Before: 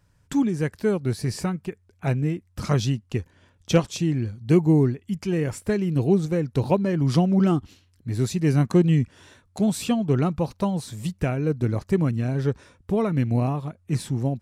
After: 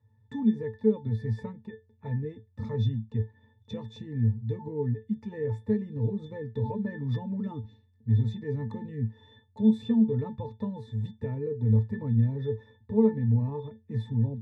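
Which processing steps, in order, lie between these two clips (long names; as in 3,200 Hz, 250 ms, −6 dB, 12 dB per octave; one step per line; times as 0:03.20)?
high-pass filter 64 Hz 24 dB per octave
brickwall limiter −17 dBFS, peak gain reduction 11.5 dB
resonances in every octave A, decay 0.19 s
level +8 dB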